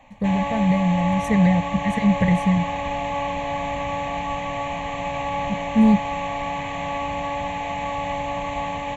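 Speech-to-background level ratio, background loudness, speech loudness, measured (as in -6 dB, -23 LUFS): 6.5 dB, -27.0 LUFS, -20.5 LUFS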